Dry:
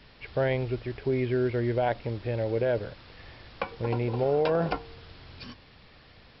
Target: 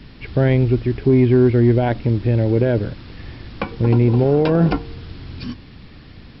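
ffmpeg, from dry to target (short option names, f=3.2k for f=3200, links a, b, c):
-af "lowshelf=f=400:t=q:w=1.5:g=8.5,acontrast=74"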